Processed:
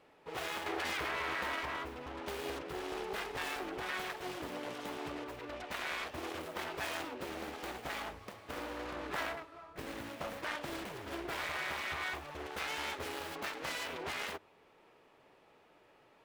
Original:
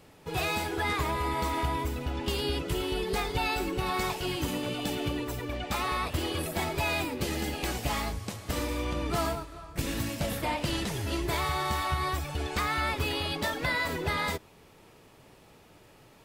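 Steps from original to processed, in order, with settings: self-modulated delay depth 0.82 ms; tone controls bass -14 dB, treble -13 dB; hum notches 50/100 Hz; 0.66–1.56 s: level flattener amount 100%; trim -5 dB

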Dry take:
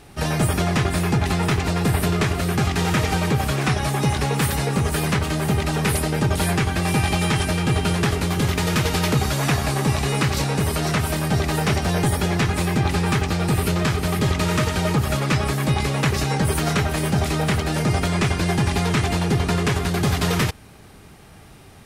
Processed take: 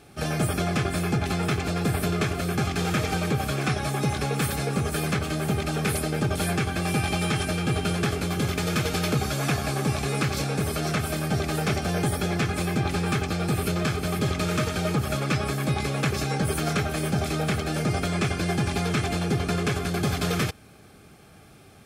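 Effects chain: comb of notches 960 Hz; trim -3.5 dB

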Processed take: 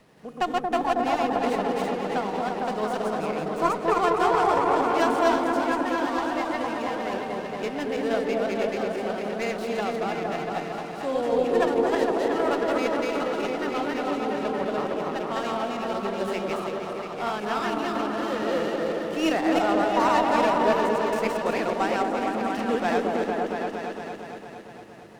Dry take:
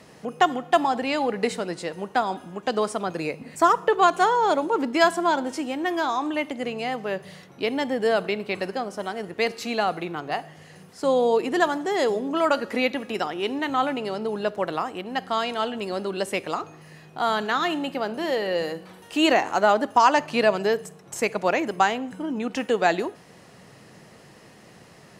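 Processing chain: backward echo that repeats 166 ms, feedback 45%, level -1 dB; delay with an opening low-pass 229 ms, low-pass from 750 Hz, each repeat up 1 oct, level 0 dB; sliding maximum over 5 samples; trim -7.5 dB

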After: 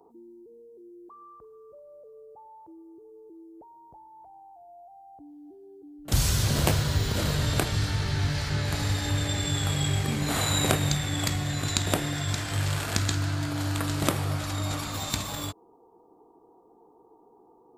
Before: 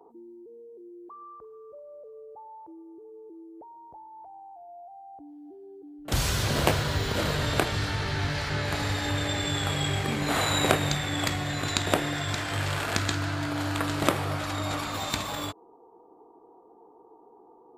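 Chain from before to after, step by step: tone controls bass +8 dB, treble +8 dB; trim -4 dB

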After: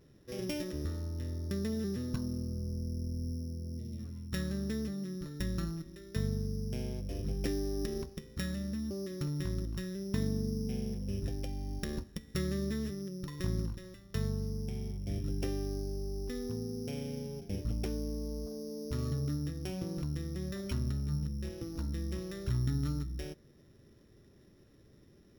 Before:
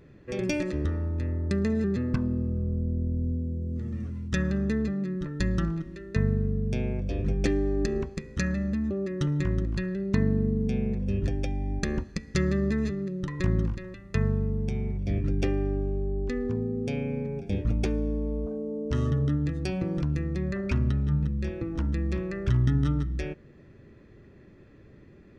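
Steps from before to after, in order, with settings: sorted samples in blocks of 8 samples; spectral replace 3.36–3.97 s, 560–1900 Hz before; trim -8.5 dB

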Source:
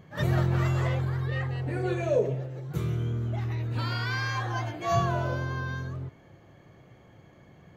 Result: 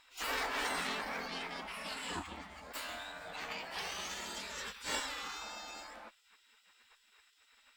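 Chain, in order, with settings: spectral gate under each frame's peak -25 dB weak; Chebyshev shaper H 6 -24 dB, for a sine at -29 dBFS; formant shift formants +3 st; trim +5 dB

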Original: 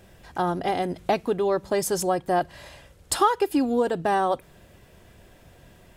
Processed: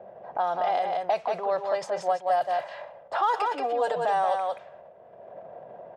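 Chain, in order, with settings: transient shaper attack -3 dB, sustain +10 dB; resonant low shelf 440 Hz -12.5 dB, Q 3; 1.78–2.36 s: transient shaper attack +4 dB, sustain -10 dB; 3.33–4.05 s: comb 6.7 ms, depth 90%; level-controlled noise filter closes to 430 Hz, open at -14.5 dBFS; band-pass 190–7900 Hz; delay 178 ms -5 dB; three bands compressed up and down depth 70%; trim -5.5 dB

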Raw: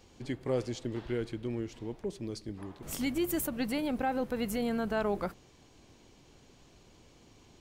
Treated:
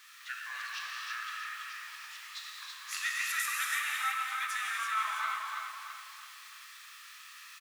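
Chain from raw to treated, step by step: in parallel at -6 dB: word length cut 8-bit, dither triangular; on the sum: steep high-pass 1.5 kHz 36 dB/octave; gated-style reverb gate 370 ms flat, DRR -2.5 dB; formant shift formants -3 st; low-pass 2 kHz 6 dB/octave; on a send: feedback delay 329 ms, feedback 42%, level -5.5 dB; on the sum: trim +6 dB

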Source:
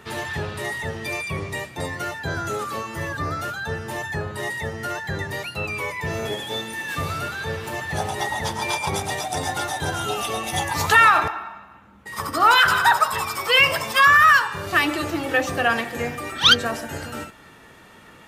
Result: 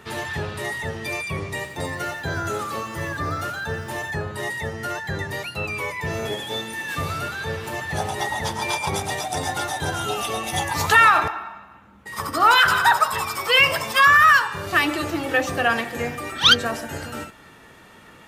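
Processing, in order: 1.52–4.11 s: bit-crushed delay 87 ms, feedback 55%, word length 8-bit, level -11 dB

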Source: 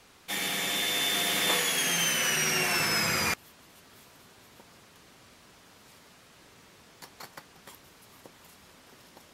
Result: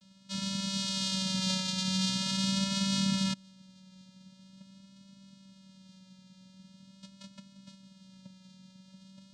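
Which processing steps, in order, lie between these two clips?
vocoder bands 4, square 191 Hz; vibrato 0.44 Hz 31 cents; ten-band graphic EQ 500 Hz -12 dB, 1 kHz -9 dB, 2 kHz -11 dB, 4 kHz +8 dB

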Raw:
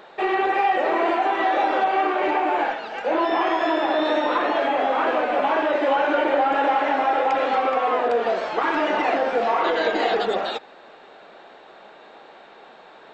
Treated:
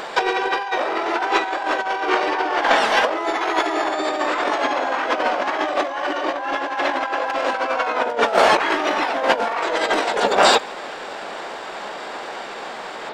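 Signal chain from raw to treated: harmony voices +4 st -3 dB, +12 st -6 dB; compressor with a negative ratio -24 dBFS, ratio -0.5; trim +5.5 dB

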